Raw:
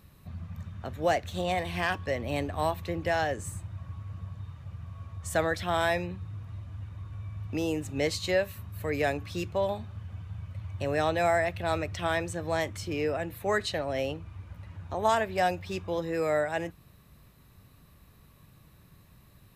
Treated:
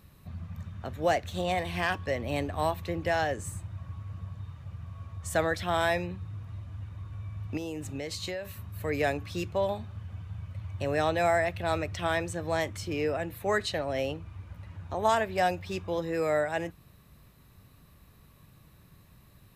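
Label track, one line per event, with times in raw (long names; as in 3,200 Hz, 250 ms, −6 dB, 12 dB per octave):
7.570000	8.450000	downward compressor 12 to 1, threshold −31 dBFS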